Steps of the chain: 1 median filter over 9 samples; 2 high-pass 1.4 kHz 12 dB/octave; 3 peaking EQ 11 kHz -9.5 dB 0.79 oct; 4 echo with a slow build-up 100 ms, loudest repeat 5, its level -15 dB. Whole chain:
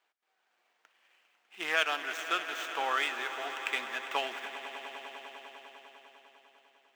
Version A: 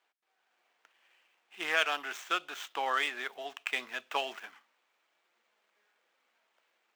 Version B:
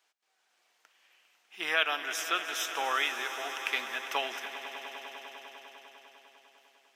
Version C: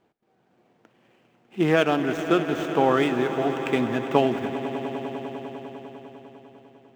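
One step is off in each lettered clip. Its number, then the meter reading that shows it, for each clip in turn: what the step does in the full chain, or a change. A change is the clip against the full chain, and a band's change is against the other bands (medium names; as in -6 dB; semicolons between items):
4, momentary loudness spread change -7 LU; 1, 8 kHz band +7.0 dB; 2, 250 Hz band +22.0 dB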